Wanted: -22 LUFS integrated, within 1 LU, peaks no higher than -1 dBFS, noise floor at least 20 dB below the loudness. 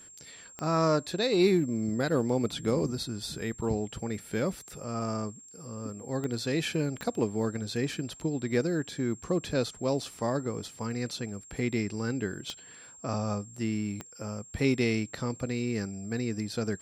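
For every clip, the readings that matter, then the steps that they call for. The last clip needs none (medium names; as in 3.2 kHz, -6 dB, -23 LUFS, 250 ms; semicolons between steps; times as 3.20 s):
clicks found 5; steady tone 7.5 kHz; tone level -49 dBFS; loudness -31.0 LUFS; peak level -13.5 dBFS; loudness target -22.0 LUFS
-> de-click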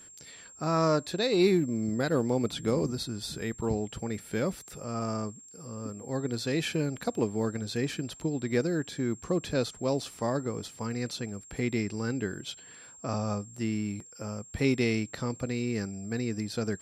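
clicks found 0; steady tone 7.5 kHz; tone level -49 dBFS
-> band-stop 7.5 kHz, Q 30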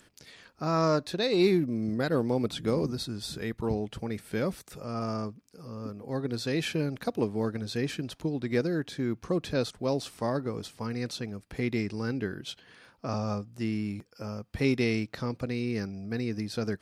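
steady tone not found; loudness -31.0 LUFS; peak level -13.5 dBFS; loudness target -22.0 LUFS
-> trim +9 dB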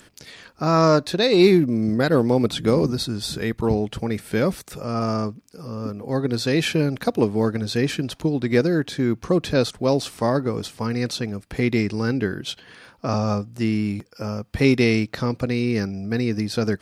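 loudness -22.0 LUFS; peak level -4.5 dBFS; noise floor -53 dBFS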